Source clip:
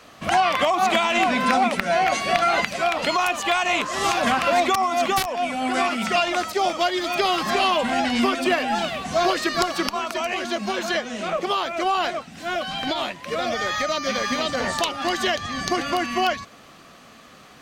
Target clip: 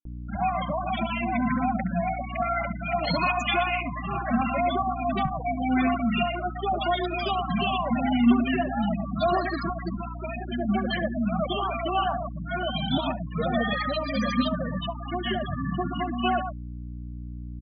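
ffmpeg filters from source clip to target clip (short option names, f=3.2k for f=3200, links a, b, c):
-filter_complex "[0:a]acrossover=split=110[a][b];[b]dynaudnorm=f=240:g=3:m=12dB[c];[a][c]amix=inputs=2:normalize=0,lowshelf=f=250:t=q:w=1.5:g=9.5,asettb=1/sr,asplit=3[d][e][f];[d]atrim=end=2.854[g];[e]atrim=start=2.85:end=3.57,asetpts=PTS-STARTPTS,afade=t=in:d=0.004:c=qsin,afade=t=out:st=0.716:d=0.004:c=qsin,acontrast=40[h];[f]atrim=start=3.566[i];[g][h]acrossfade=d=0.004:c1=hsin:c2=qsin[j];[j][i]acrossfade=d=0.004:c1=qsin:c2=hsin,flanger=delay=2.8:depth=5.6:regen=-39:speed=0.43:shape=sinusoidal,asplit=2[k][l];[l]aecho=0:1:121:0.398[m];[k][m]amix=inputs=2:normalize=0,adynamicequalizer=threshold=0.0316:dfrequency=430:dqfactor=1.5:tfrequency=430:tqfactor=1.5:attack=5:release=100:ratio=0.375:range=2:mode=cutabove:tftype=bell,afftfilt=real='re*gte(hypot(re,im),0.251)':imag='im*gte(hypot(re,im),0.251)':win_size=1024:overlap=0.75,aeval=exprs='val(0)+0.0355*(sin(2*PI*60*n/s)+sin(2*PI*2*60*n/s)/2+sin(2*PI*3*60*n/s)/3+sin(2*PI*4*60*n/s)/4+sin(2*PI*5*60*n/s)/5)':c=same,acrossover=split=1400[n][o];[n]adelay=70[p];[p][o]amix=inputs=2:normalize=0,volume=-6dB"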